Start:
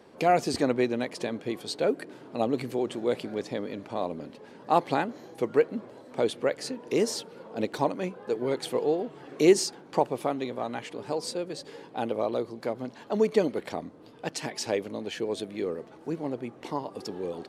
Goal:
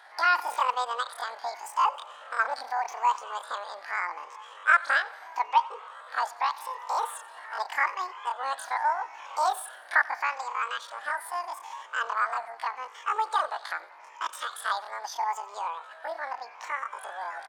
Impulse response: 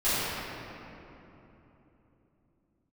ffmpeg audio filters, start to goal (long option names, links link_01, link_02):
-filter_complex "[0:a]afftfilt=real='re*pow(10,9/40*sin(2*PI*(0.75*log(max(b,1)*sr/1024/100)/log(2)-(0.81)*(pts-256)/sr)))':imag='im*pow(10,9/40*sin(2*PI*(0.75*log(max(b,1)*sr/1024/100)/log(2)-(0.81)*(pts-256)/sr)))':win_size=1024:overlap=0.75,highpass=500,lowpass=4800,asplit=2[link_01][link_02];[link_02]acompressor=threshold=-43dB:ratio=5,volume=-2dB[link_03];[link_01][link_03]amix=inputs=2:normalize=0,asetrate=88200,aresample=44100,atempo=0.5,equalizer=frequency=1200:width=0.43:gain=10,asplit=2[link_04][link_05];[link_05]aecho=0:1:90|180|270|360|450:0.0841|0.0496|0.0293|0.0173|0.0102[link_06];[link_04][link_06]amix=inputs=2:normalize=0,volume=-7.5dB"